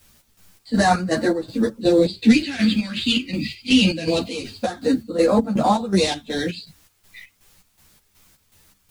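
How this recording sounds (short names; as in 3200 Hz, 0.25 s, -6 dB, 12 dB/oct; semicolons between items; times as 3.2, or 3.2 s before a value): phasing stages 2, 0.24 Hz, lowest notch 770–2600 Hz; a quantiser's noise floor 10-bit, dither triangular; chopped level 2.7 Hz, depth 65%, duty 55%; a shimmering, thickened sound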